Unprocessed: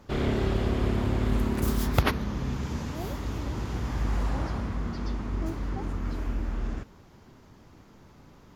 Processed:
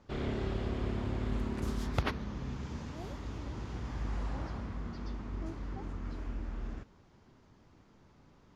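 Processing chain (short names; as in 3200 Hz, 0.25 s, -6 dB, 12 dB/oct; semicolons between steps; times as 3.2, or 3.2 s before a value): LPF 7100 Hz 12 dB/oct; gain -8.5 dB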